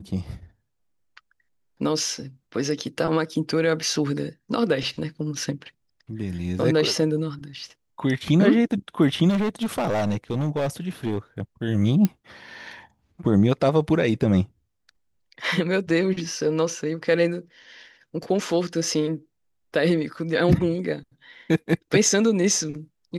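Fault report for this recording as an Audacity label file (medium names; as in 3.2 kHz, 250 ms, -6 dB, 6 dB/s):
9.290000	11.180000	clipped -20 dBFS
12.050000	12.050000	pop -9 dBFS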